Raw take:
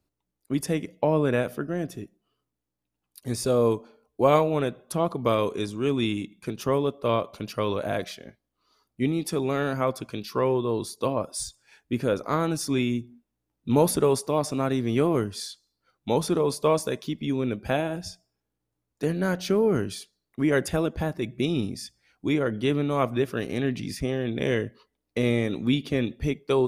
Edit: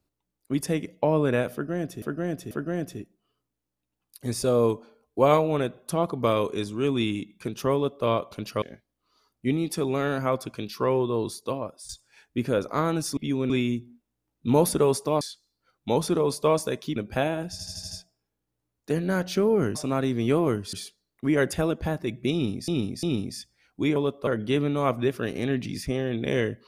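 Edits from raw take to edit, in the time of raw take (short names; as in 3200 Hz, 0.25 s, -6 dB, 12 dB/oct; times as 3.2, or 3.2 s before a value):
1.53–2.02 loop, 3 plays
6.76–7.07 copy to 22.41
7.64–8.17 cut
10.82–11.44 fade out, to -15 dB
14.43–15.41 move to 19.88
17.16–17.49 move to 12.72
18.04 stutter 0.08 s, 6 plays
21.48–21.83 loop, 3 plays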